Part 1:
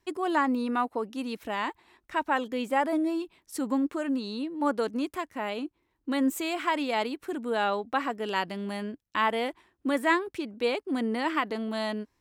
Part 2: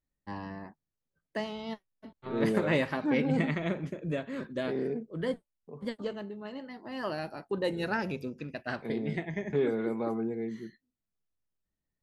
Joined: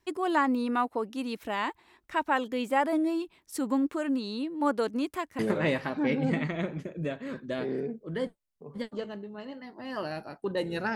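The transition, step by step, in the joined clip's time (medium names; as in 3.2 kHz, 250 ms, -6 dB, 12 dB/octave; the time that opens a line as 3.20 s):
part 1
5.39 s: go over to part 2 from 2.46 s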